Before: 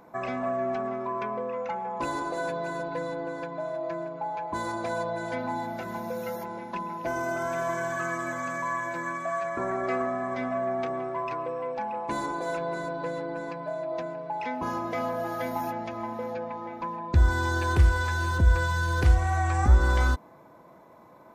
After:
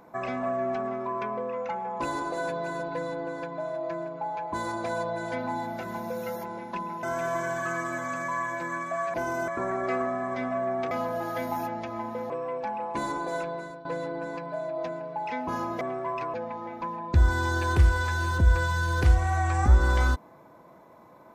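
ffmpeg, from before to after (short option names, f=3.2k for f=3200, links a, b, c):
-filter_complex "[0:a]asplit=9[a][b][c][d][e][f][g][h][i];[a]atrim=end=7.032[j];[b]atrim=start=7.368:end=9.482[k];[c]atrim=start=7.028:end=7.372[l];[d]atrim=start=9.478:end=10.912[m];[e]atrim=start=14.948:end=16.342[n];[f]atrim=start=11.438:end=12.99,asetpts=PTS-STARTPTS,afade=t=out:st=1.052:d=0.5:silence=0.188365[o];[g]atrim=start=12.99:end=14.952,asetpts=PTS-STARTPTS,afade=t=in:d=0.004:c=hsin:silence=0.188365[p];[h]atrim=start=10.908:end=11.442[q];[i]atrim=start=16.338[r];[j][k]acrossfade=d=0.004:c1=hsin:c2=hsin[s];[s][l]acrossfade=d=0.004:c1=hsin:c2=hsin[t];[t][m]acrossfade=d=0.004:c1=hsin:c2=hsin[u];[u][n]acrossfade=d=0.004:c1=hsin:c2=hsin[v];[o][p]concat=n=2:v=0:a=1[w];[v][w]acrossfade=d=0.004:c1=hsin:c2=hsin[x];[x][q]acrossfade=d=0.004:c1=hsin:c2=hsin[y];[y][r]acrossfade=d=0.004:c1=hsin:c2=hsin"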